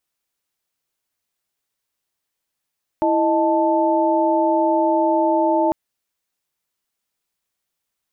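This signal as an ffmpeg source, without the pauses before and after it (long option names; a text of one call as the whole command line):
ffmpeg -f lavfi -i "aevalsrc='0.112*(sin(2*PI*329.63*t)+sin(2*PI*622.25*t)+sin(2*PI*880*t))':duration=2.7:sample_rate=44100" out.wav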